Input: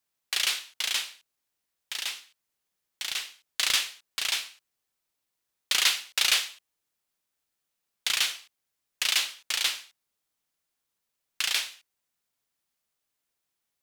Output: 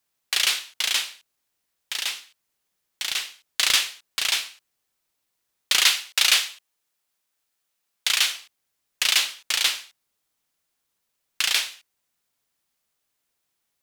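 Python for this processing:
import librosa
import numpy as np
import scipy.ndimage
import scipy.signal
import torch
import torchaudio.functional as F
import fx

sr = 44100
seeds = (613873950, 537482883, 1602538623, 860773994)

y = fx.low_shelf(x, sr, hz=360.0, db=-7.0, at=(5.83, 8.34))
y = F.gain(torch.from_numpy(y), 5.0).numpy()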